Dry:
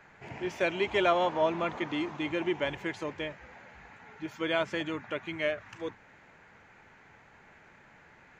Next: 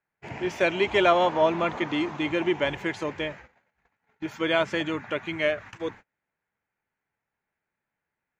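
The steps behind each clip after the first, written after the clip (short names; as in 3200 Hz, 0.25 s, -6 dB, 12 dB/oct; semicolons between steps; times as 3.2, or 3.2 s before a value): gate -47 dBFS, range -34 dB; gain +5.5 dB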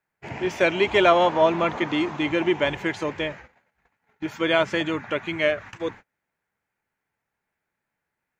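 wow and flutter 21 cents; gain +3 dB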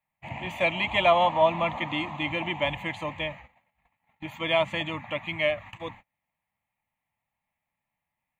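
fixed phaser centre 1500 Hz, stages 6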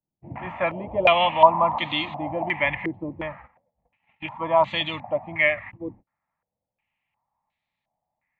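stepped low-pass 2.8 Hz 360–3900 Hz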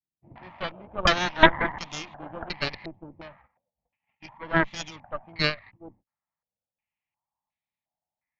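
added harmonics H 3 -14 dB, 4 -6 dB, 7 -44 dB, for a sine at -1 dBFS; downsampling 16000 Hz; gain -3.5 dB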